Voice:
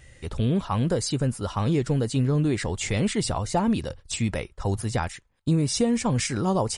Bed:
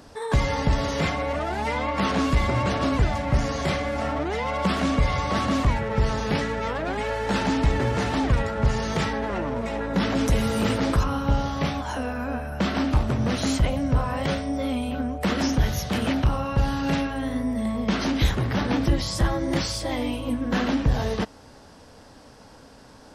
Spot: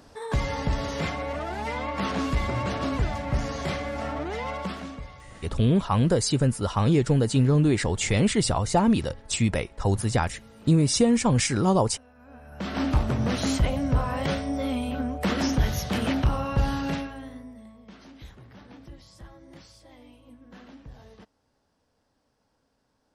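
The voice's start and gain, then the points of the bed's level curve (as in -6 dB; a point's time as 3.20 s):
5.20 s, +2.5 dB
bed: 4.50 s -4.5 dB
5.31 s -26 dB
12.13 s -26 dB
12.84 s -1.5 dB
16.76 s -1.5 dB
17.79 s -24 dB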